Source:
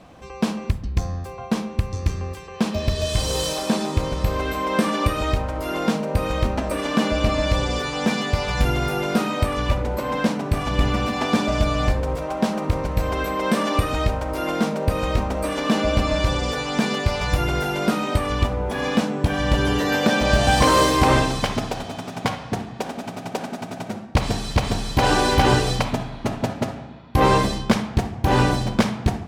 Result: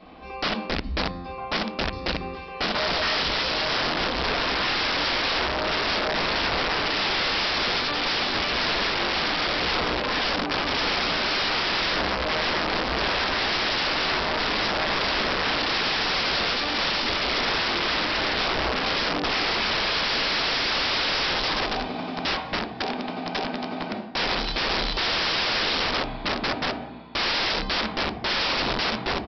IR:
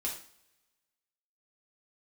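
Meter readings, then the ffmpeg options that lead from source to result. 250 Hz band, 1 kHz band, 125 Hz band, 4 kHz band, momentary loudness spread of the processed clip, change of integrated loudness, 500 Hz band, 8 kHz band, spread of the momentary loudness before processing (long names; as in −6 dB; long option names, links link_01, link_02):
−9.0 dB, −2.5 dB, −14.5 dB, +6.0 dB, 6 LU, −1.5 dB, −5.5 dB, −9.5 dB, 9 LU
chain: -filter_complex "[0:a]lowshelf=frequency=150:gain=-4.5[link_01];[1:a]atrim=start_sample=2205,atrim=end_sample=6174[link_02];[link_01][link_02]afir=irnorm=-1:irlink=0,aresample=11025,aeval=exprs='(mod(9.44*val(0)+1,2)-1)/9.44':channel_layout=same,aresample=44100,equalizer=frequency=110:width_type=o:width=1.4:gain=-6.5"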